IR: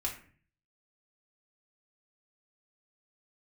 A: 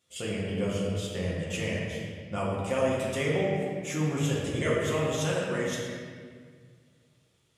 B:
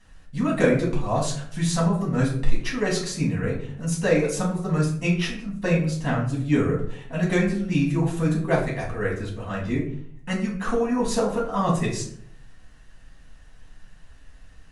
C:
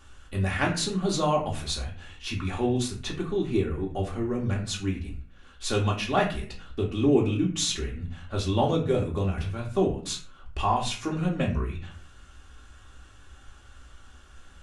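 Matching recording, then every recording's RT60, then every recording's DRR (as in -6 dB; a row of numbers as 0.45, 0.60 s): C; 1.7, 0.60, 0.45 s; -6.0, -5.5, -3.0 dB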